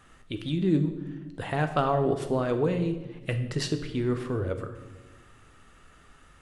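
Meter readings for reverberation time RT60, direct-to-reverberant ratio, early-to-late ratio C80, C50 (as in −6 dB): 1.2 s, 7.0 dB, 12.0 dB, 10.0 dB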